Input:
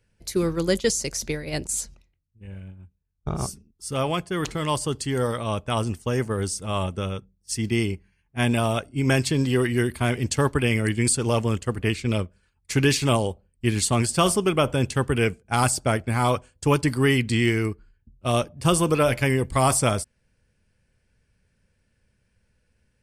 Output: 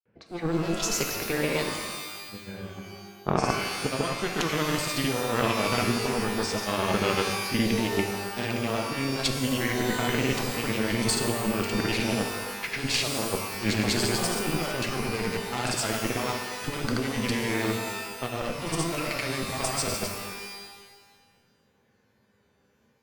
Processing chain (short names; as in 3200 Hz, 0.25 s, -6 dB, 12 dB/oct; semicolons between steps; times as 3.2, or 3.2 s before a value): LPF 4500 Hz 12 dB/oct; low-pass opened by the level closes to 1400 Hz, open at -20.5 dBFS; HPF 190 Hz 12 dB/oct; added harmonics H 4 -10 dB, 5 -27 dB, 6 -8 dB, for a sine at -6 dBFS; negative-ratio compressor -28 dBFS, ratio -1; grains, pitch spread up and down by 0 st; shimmer reverb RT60 1.3 s, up +12 st, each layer -2 dB, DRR 4.5 dB